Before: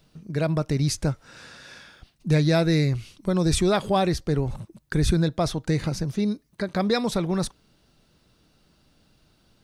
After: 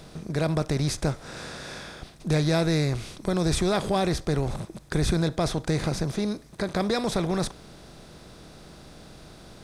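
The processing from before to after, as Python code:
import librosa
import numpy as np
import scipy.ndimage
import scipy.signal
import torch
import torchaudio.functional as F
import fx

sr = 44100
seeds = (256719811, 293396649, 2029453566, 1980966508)

y = fx.bin_compress(x, sr, power=0.6)
y = y * 10.0 ** (-5.0 / 20.0)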